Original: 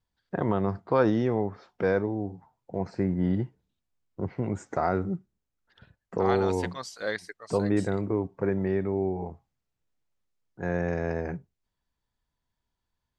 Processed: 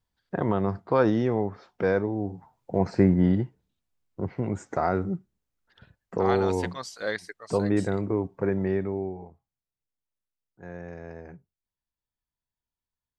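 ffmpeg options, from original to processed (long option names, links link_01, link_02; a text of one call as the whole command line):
ffmpeg -i in.wav -af "volume=8dB,afade=type=in:start_time=2.12:duration=0.91:silence=0.446684,afade=type=out:start_time=3.03:duration=0.41:silence=0.446684,afade=type=out:start_time=8.72:duration=0.58:silence=0.237137" out.wav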